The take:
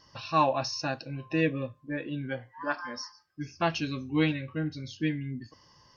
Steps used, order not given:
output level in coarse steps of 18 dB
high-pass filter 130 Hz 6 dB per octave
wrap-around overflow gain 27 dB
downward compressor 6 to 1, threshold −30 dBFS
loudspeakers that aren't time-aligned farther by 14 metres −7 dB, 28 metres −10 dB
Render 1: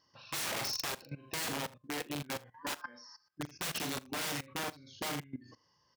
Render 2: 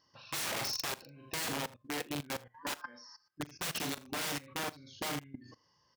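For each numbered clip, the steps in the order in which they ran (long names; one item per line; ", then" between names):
wrap-around overflow, then downward compressor, then loudspeakers that aren't time-aligned, then output level in coarse steps, then high-pass filter
wrap-around overflow, then high-pass filter, then downward compressor, then loudspeakers that aren't time-aligned, then output level in coarse steps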